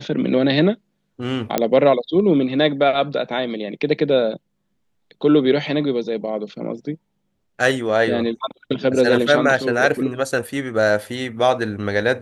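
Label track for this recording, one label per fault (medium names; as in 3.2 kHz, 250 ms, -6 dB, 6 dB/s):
1.580000	1.580000	pop -3 dBFS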